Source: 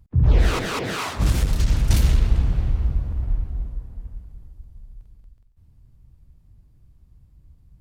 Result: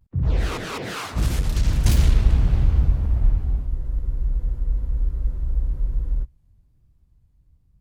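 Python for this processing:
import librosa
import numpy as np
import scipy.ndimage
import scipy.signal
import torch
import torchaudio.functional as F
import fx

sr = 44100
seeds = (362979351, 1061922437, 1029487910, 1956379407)

y = fx.doppler_pass(x, sr, speed_mps=9, closest_m=9.0, pass_at_s=3.31)
y = fx.vibrato(y, sr, rate_hz=1.2, depth_cents=95.0)
y = fx.spec_freeze(y, sr, seeds[0], at_s=3.69, hold_s=2.54)
y = y * 10.0 ** (5.0 / 20.0)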